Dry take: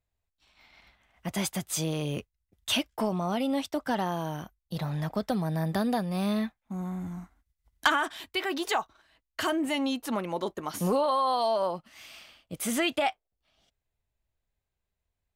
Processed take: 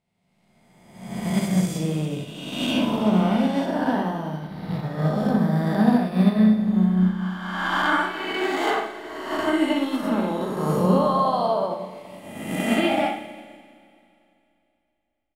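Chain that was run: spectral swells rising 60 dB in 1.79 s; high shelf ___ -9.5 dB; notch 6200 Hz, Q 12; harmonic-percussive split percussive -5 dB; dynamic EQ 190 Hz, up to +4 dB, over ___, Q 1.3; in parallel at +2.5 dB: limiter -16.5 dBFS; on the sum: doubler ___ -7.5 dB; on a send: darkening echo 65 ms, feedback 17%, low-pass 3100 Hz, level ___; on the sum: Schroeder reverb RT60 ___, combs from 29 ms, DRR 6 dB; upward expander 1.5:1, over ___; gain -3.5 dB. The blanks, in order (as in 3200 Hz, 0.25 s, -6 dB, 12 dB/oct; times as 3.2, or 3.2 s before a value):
2800 Hz, -39 dBFS, 38 ms, -3.5 dB, 2.9 s, -34 dBFS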